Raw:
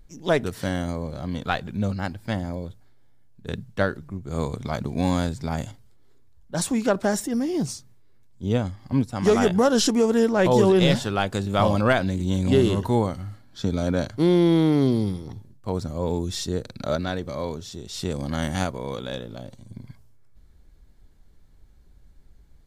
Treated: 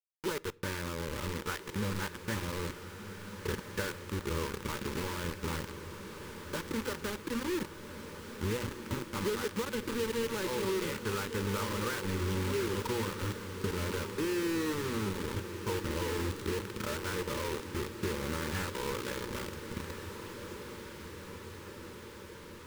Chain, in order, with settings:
low-pass filter 2,300 Hz 24 dB per octave
parametric band 150 Hz −12.5 dB 0.92 octaves
mains-hum notches 60/120/180/240/300 Hz
in parallel at −0.5 dB: brickwall limiter −16.5 dBFS, peak gain reduction 9.5 dB
on the sum: downward compressor 8 to 1, threshold −31 dBFS, peak gain reduction 18.5 dB
notch comb filter 270 Hz
bit reduction 6 bits
Butterworth band-reject 690 Hz, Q 2.4
feedback delay with all-pass diffusion 1,411 ms, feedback 70%, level −9.5 dB
on a send at −21 dB: convolution reverb RT60 0.55 s, pre-delay 5 ms

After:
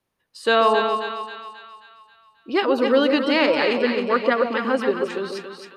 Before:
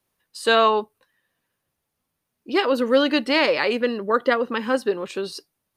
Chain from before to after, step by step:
low-pass filter 3,900 Hz 6 dB per octave
echo with a time of its own for lows and highs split 1,000 Hz, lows 140 ms, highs 268 ms, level −5 dB

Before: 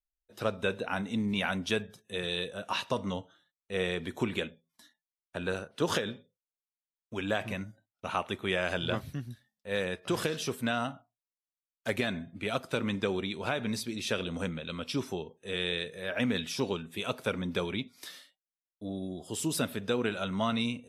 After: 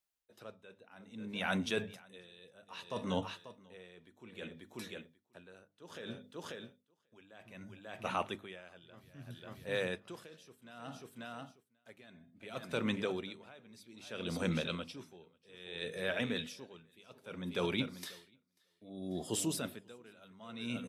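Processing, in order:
reversed playback
downward compressor, threshold −37 dBFS, peak gain reduction 13 dB
reversed playback
high-pass filter 98 Hz
mains-hum notches 50/100/150/200/250/300 Hz
repeating echo 540 ms, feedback 18%, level −13 dB
tremolo with a sine in dB 0.62 Hz, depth 25 dB
level +7.5 dB

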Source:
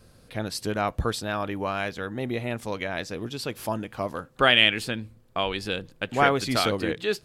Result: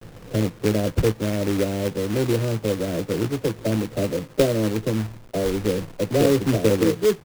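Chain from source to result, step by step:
every frequency bin delayed by itself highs early, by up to 303 ms
Butterworth low-pass 560 Hz 48 dB per octave
noise gate with hold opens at −51 dBFS
in parallel at +1.5 dB: downward compressor 4 to 1, threshold −38 dBFS, peak gain reduction 14 dB
on the sum: log-companded quantiser 4 bits
double-tracking delay 18 ms −14 dB
level +6.5 dB

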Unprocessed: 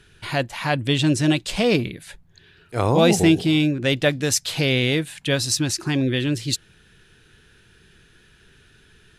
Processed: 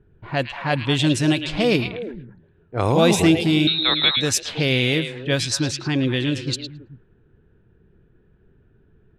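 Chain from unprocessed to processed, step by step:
low-pass that shuts in the quiet parts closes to 570 Hz, open at −16 dBFS
0:03.67–0:04.17: voice inversion scrambler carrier 4,000 Hz
echo through a band-pass that steps 109 ms, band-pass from 3,000 Hz, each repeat −1.4 octaves, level −4 dB

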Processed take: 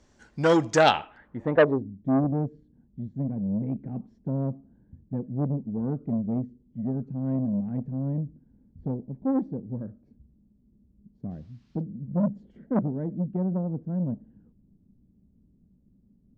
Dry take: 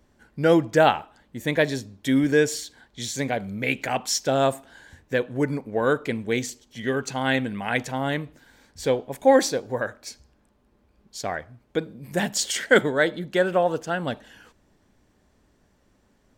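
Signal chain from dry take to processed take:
low-pass filter sweep 6,500 Hz → 200 Hz, 0:00.76–0:01.98
0:11.30–0:11.80: noise in a band 660–5,300 Hz −75 dBFS
saturating transformer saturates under 1,300 Hz

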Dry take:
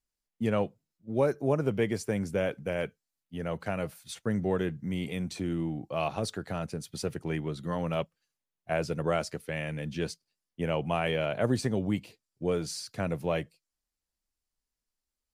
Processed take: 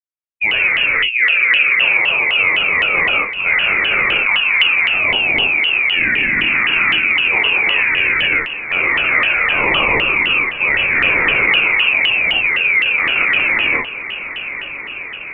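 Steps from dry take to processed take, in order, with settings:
high-pass filter 190 Hz 12 dB per octave
reverb whose tail is shaped and stops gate 470 ms flat, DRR −7 dB
in parallel at +0.5 dB: compressor whose output falls as the input rises −30 dBFS, ratio −0.5
on the sum: downward expander −22 dBFS
on a send: feedback delay with all-pass diffusion 1,006 ms, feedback 71%, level −13.5 dB
on the sum: voice inversion scrambler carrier 2,800 Hz
pitch modulation by a square or saw wave saw down 3.9 Hz, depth 250 cents
level +7 dB

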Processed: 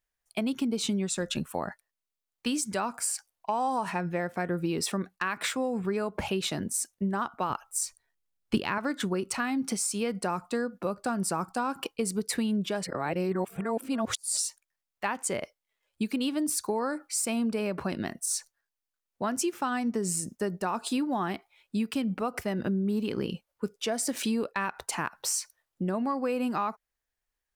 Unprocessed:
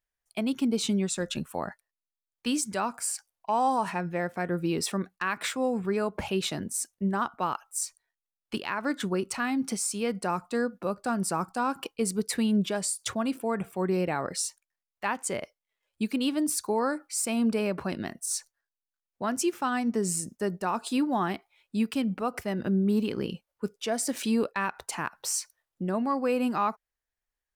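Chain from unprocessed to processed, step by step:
downward compressor, threshold −28 dBFS, peak gain reduction 7 dB
0:07.50–0:08.78: low-shelf EQ 290 Hz +11 dB
0:12.84–0:14.37: reverse
level +2.5 dB

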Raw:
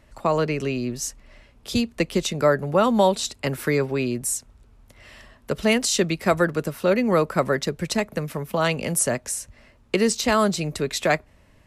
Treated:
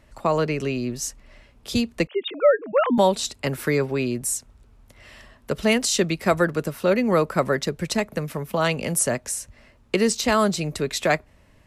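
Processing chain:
0:02.07–0:02.98: three sine waves on the formant tracks

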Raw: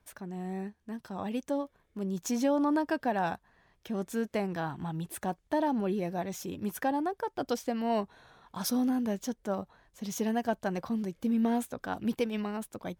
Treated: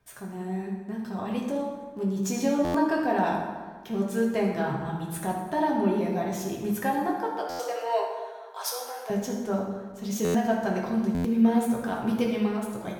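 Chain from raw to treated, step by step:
0:07.09–0:09.10: Butterworth high-pass 440 Hz 48 dB per octave
convolution reverb RT60 1.5 s, pre-delay 4 ms, DRR −3 dB
buffer that repeats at 0:02.64/0:07.49/0:10.24/0:11.14, samples 512, times 8

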